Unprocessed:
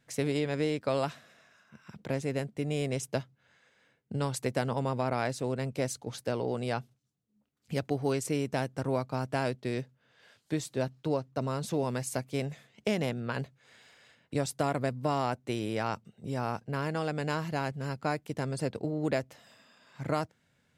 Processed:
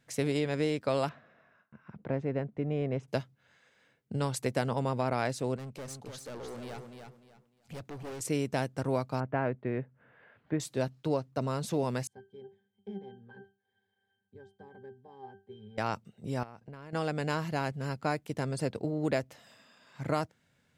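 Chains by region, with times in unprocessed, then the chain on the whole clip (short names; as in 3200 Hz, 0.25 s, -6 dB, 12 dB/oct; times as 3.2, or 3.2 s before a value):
1.09–3.08 LPF 1600 Hz + gate with hold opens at -55 dBFS, closes at -62 dBFS
5.56–8.21 hard clip -33.5 dBFS + compressor 1.5:1, threshold -50 dBFS + feedback echo 0.3 s, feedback 26%, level -6 dB
9.2–10.6 LPF 2100 Hz 24 dB/oct + upward compressor, threshold -53 dBFS
12.07–15.78 bell 63 Hz -7.5 dB 1.5 oct + octave resonator G, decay 0.28 s
16.43–16.93 high shelf 5400 Hz -8.5 dB + compressor 12:1, threshold -42 dBFS
whole clip: dry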